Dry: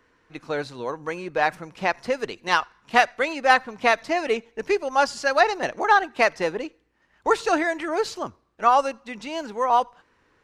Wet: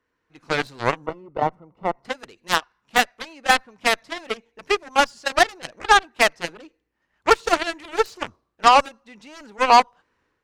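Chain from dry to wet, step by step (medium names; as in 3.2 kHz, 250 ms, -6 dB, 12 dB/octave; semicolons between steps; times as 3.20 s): level rider gain up to 15 dB; Chebyshev shaper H 7 -15 dB, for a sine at -0.5 dBFS; 1.06–2.05 s: Savitzky-Golay filter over 65 samples; trim -1.5 dB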